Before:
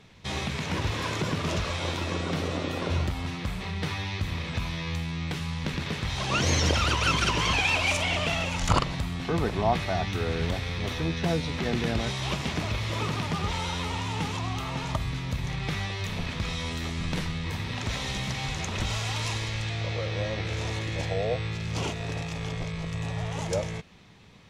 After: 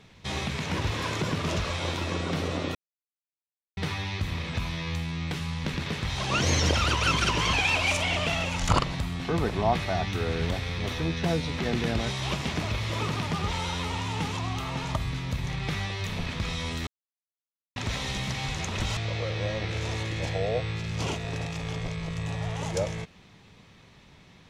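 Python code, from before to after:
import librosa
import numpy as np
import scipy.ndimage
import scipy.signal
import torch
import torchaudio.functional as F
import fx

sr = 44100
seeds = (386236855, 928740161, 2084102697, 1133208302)

y = fx.edit(x, sr, fx.silence(start_s=2.75, length_s=1.02),
    fx.silence(start_s=16.87, length_s=0.89),
    fx.cut(start_s=18.97, length_s=0.76), tone=tone)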